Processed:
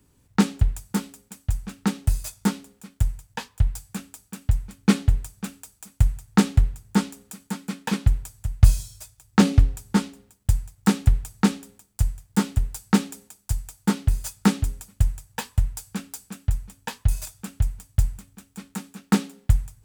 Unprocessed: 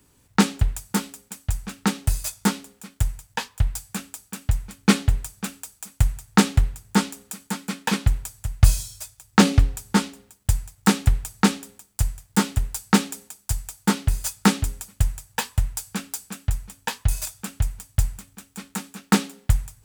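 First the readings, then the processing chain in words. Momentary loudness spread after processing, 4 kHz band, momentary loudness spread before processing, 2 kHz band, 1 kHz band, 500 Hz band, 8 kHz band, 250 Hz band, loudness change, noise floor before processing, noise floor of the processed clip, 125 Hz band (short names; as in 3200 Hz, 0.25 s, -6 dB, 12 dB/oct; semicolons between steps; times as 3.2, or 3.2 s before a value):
16 LU, -6.0 dB, 14 LU, -5.5 dB, -5.0 dB, -2.5 dB, -6.0 dB, -0.5 dB, -0.5 dB, -61 dBFS, -63 dBFS, +0.5 dB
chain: low shelf 420 Hz +7 dB; gain -6 dB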